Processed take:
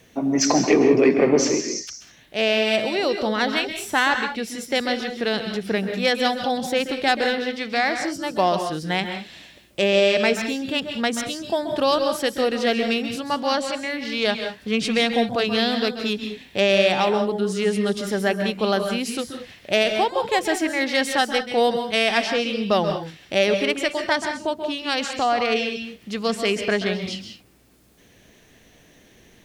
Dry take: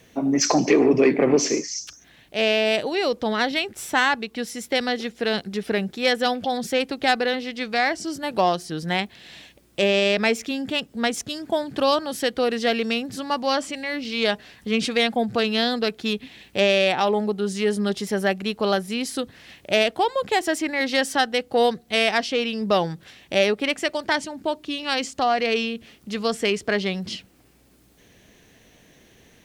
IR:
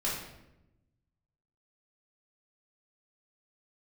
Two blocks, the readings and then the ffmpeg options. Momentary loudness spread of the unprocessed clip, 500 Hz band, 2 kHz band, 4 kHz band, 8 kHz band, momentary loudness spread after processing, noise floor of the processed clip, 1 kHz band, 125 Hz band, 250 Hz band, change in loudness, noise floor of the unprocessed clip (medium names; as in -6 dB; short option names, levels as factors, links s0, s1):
9 LU, +1.0 dB, +1.0 dB, +1.0 dB, +1.0 dB, 9 LU, -53 dBFS, +1.0 dB, +1.0 dB, +1.0 dB, +1.0 dB, -56 dBFS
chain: -filter_complex "[0:a]asplit=2[s0][s1];[1:a]atrim=start_sample=2205,atrim=end_sample=3969,adelay=131[s2];[s1][s2]afir=irnorm=-1:irlink=0,volume=0.266[s3];[s0][s3]amix=inputs=2:normalize=0"